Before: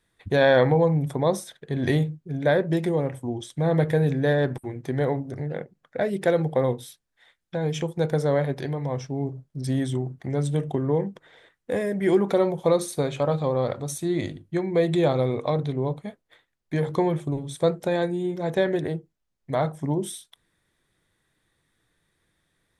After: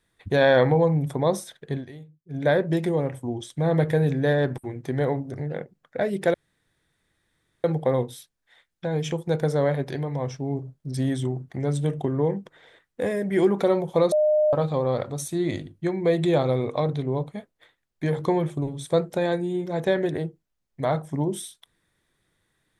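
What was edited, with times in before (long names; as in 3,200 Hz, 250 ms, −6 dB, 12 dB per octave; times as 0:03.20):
0:01.73–0:02.38: duck −20.5 dB, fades 0.12 s
0:06.34: splice in room tone 1.30 s
0:12.82–0:13.23: beep over 609 Hz −16.5 dBFS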